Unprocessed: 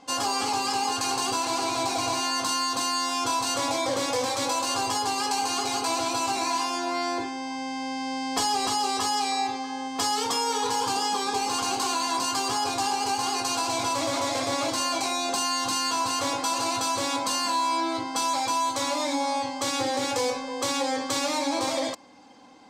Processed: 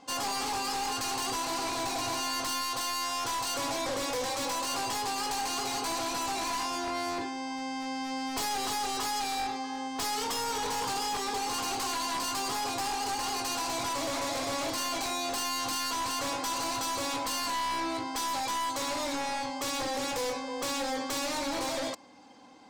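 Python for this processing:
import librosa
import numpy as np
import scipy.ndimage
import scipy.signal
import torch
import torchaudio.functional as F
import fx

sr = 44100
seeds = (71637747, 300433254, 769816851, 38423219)

y = np.minimum(x, 2.0 * 10.0 ** (-25.0 / 20.0) - x)
y = fx.peak_eq(y, sr, hz=250.0, db=-7.0, octaves=0.62, at=(2.61, 3.56))
y = 10.0 ** (-22.5 / 20.0) * np.tanh(y / 10.0 ** (-22.5 / 20.0))
y = y * librosa.db_to_amplitude(-2.5)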